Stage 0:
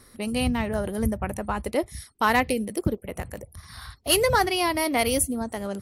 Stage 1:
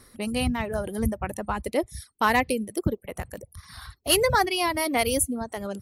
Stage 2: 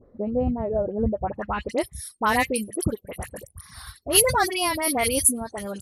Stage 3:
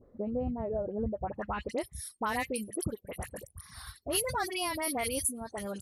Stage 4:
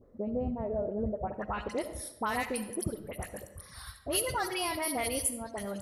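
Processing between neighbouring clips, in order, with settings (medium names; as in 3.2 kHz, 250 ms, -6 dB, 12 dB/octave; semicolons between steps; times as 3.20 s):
reverb removal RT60 0.73 s
phase dispersion highs, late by 56 ms, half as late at 1.7 kHz; low-pass sweep 570 Hz -> 11 kHz, 1.20–1.86 s
compression 2.5:1, threshold -26 dBFS, peak gain reduction 10 dB; trim -5 dB
algorithmic reverb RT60 0.99 s, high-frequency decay 0.6×, pre-delay 25 ms, DRR 9.5 dB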